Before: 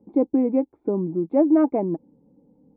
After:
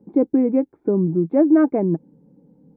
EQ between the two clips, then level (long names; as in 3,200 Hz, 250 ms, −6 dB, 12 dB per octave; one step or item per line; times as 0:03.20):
graphic EQ with 15 bands 160 Hz +10 dB, 400 Hz +4 dB, 1,600 Hz +10 dB
dynamic equaliser 890 Hz, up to −4 dB, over −34 dBFS, Q 2.4
0.0 dB